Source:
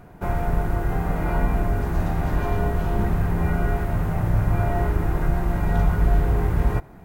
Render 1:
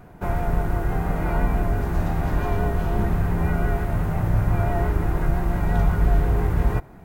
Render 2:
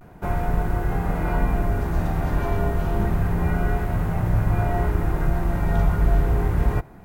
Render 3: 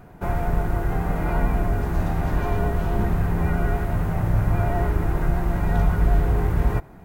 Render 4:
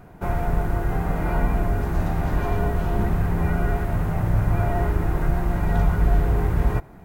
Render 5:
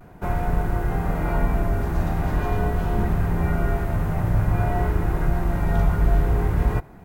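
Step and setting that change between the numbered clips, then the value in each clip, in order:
pitch vibrato, speed: 5.8, 0.3, 11, 16, 0.47 Hertz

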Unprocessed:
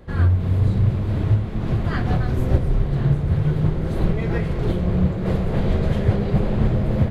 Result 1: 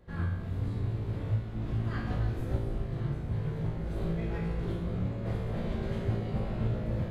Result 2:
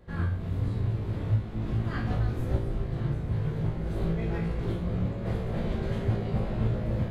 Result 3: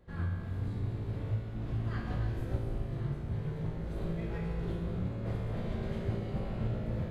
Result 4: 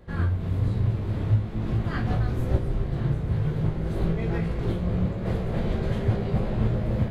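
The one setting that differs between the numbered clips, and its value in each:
tuned comb filter, decay: 1, 0.46, 2.2, 0.2 seconds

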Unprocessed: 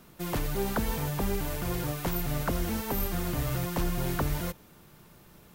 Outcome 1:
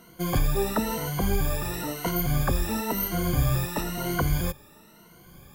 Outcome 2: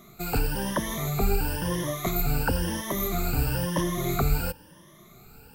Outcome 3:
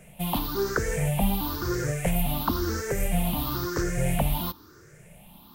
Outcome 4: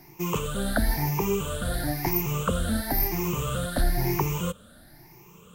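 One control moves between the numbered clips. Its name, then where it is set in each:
rippled gain that drifts along the octave scale, ripples per octave: 1.9, 1.2, 0.51, 0.75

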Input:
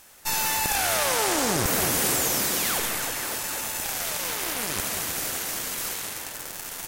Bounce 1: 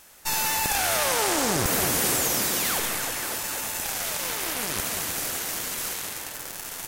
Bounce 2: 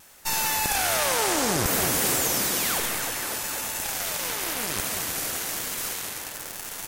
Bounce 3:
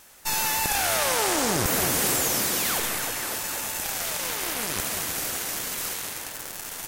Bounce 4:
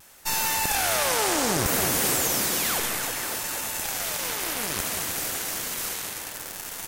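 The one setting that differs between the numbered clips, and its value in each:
pitch vibrato, speed: 12, 1.1, 5.4, 0.63 Hertz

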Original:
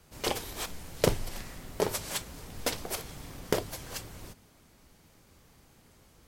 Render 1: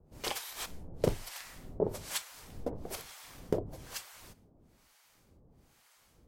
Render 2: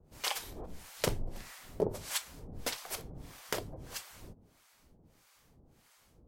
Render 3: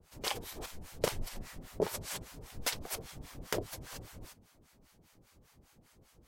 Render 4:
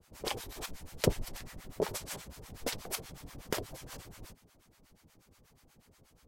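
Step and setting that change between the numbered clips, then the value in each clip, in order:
two-band tremolo in antiphase, speed: 1.1, 1.6, 5, 8.3 Hertz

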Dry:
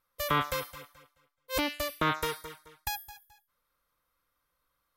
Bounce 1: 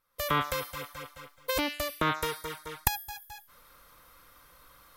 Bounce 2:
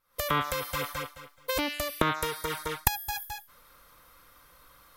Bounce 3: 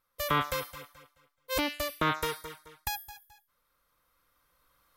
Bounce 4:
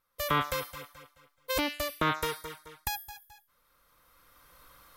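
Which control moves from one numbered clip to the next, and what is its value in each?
camcorder AGC, rising by: 35, 88, 5.1, 13 dB per second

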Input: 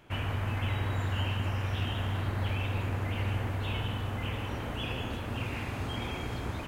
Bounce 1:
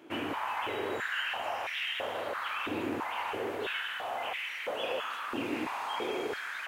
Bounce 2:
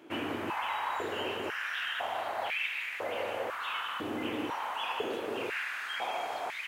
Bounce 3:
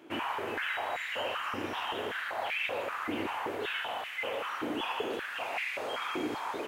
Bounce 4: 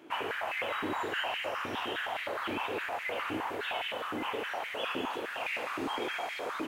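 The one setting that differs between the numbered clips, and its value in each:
high-pass on a step sequencer, speed: 3, 2, 5.2, 9.7 Hertz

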